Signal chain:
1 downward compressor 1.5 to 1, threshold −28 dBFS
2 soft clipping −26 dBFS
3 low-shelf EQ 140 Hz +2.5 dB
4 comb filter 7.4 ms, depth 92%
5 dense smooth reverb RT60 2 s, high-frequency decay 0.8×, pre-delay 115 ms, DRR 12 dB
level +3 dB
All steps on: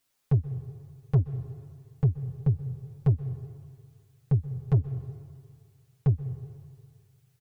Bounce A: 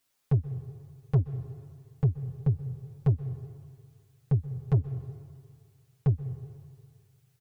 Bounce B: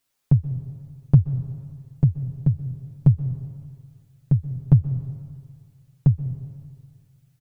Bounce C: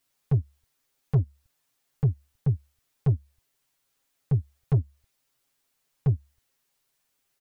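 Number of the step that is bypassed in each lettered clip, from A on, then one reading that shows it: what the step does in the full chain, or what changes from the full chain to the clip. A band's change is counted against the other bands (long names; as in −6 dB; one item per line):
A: 3, change in integrated loudness −1.5 LU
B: 2, distortion level −7 dB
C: 5, change in momentary loudness spread −13 LU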